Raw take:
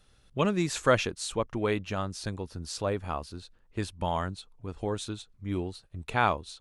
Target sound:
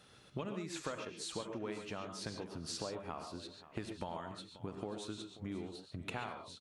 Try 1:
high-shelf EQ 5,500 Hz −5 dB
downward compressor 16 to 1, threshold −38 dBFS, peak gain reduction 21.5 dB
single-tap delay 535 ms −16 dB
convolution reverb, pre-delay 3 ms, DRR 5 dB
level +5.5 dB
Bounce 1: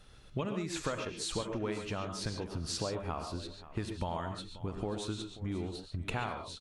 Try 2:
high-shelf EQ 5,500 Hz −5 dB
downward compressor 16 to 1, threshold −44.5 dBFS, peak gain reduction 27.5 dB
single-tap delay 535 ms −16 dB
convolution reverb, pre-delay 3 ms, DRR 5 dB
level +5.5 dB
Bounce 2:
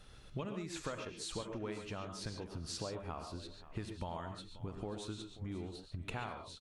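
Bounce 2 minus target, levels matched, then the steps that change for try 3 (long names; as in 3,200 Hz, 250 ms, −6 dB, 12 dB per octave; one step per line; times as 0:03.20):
125 Hz band +4.0 dB
add first: high-pass filter 140 Hz 12 dB per octave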